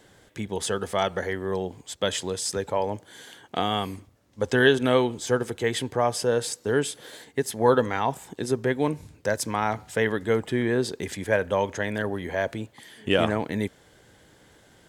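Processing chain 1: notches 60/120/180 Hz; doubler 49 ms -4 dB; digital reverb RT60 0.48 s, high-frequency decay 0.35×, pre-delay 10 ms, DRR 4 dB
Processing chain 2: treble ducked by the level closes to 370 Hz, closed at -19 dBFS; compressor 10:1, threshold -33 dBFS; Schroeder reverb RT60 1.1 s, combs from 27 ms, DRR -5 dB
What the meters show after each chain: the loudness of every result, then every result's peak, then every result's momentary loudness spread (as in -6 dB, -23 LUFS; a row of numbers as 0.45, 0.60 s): -23.5, -33.5 LUFS; -2.5, -16.5 dBFS; 12, 6 LU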